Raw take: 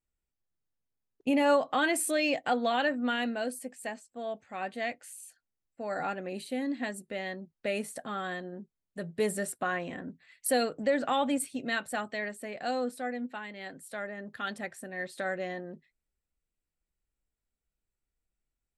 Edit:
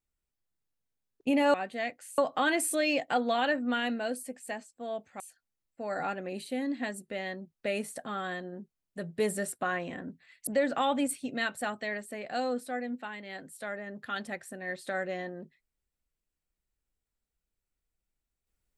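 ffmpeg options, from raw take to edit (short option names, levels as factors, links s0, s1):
-filter_complex "[0:a]asplit=5[s0][s1][s2][s3][s4];[s0]atrim=end=1.542[s5];[s1]atrim=start=4.558:end=5.202[s6];[s2]atrim=start=1.538:end=4.562[s7];[s3]atrim=start=5.198:end=10.472[s8];[s4]atrim=start=10.778[s9];[s5][s6]acrossfade=d=0.004:c1=hsin:c2=hsin[s10];[s10][s7]acrossfade=d=0.004:c1=hsin:c2=hsin[s11];[s11][s8]acrossfade=d=0.004:c1=hsin:c2=hsin[s12];[s12][s9]acrossfade=d=0.004:c1=hsin:c2=hsin"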